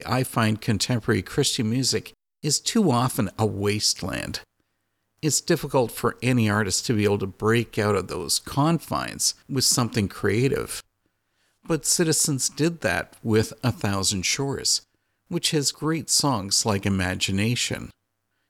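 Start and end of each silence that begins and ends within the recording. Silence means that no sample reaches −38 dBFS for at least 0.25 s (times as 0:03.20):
0:02.09–0:02.44
0:04.42–0:05.23
0:10.80–0:11.66
0:14.79–0:15.31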